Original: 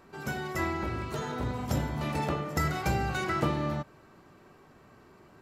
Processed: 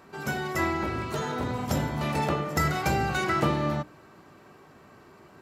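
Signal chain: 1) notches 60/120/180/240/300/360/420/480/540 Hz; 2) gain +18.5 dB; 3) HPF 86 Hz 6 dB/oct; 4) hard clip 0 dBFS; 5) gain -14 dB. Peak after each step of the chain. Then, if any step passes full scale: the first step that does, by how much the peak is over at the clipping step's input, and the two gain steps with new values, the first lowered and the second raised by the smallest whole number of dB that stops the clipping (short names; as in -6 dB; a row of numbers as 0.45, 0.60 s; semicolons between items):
-13.5, +5.0, +3.5, 0.0, -14.0 dBFS; step 2, 3.5 dB; step 2 +14.5 dB, step 5 -10 dB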